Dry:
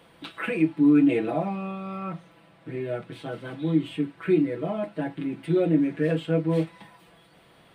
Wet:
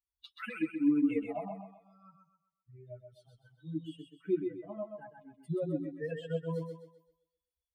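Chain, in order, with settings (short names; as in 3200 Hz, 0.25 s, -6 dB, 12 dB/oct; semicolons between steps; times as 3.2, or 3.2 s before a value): per-bin expansion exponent 3; 1.48–3.99 bell 1100 Hz -14.5 dB 1.5 oct; thinning echo 0.129 s, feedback 38%, high-pass 180 Hz, level -5.5 dB; gain -6 dB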